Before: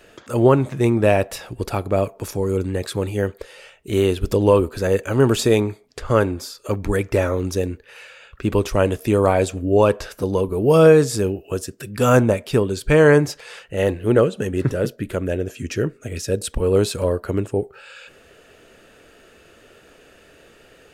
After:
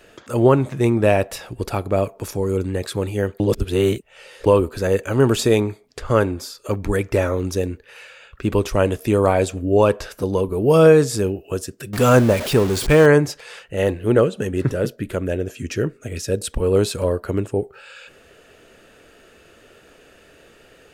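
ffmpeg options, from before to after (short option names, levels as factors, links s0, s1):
-filter_complex "[0:a]asettb=1/sr,asplit=3[s0][s1][s2];[s0]atrim=end=11.934[s3];[s1]atrim=start=11.93:end=13.06,asetpts=PTS-STARTPTS,afade=t=in:d=0.004:c=qsin,afade=t=out:st=1.126:d=0.004:c=qsin,aeval=exprs='val(0)+0.5*0.0794*sgn(val(0))':c=same[s4];[s2]atrim=start=13.056[s5];[s3][s4]acrossfade=d=0.004:c1=hsin:c2=qsin[s6];[s6][s5]acrossfade=d=0.004:c1=qsin:c2=hsin,asplit=3[s7][s8][s9];[s7]atrim=end=3.402[s10];[s8]atrim=start=3.398:end=4.462,asetpts=PTS-STARTPTS,areverse[s11];[s9]atrim=start=4.458[s12];[s10][s11]acrossfade=d=0.004:c1=hsin:c2=hsin[s13];[s13][s12]acrossfade=d=0.004:c1=hsin:c2=hsin"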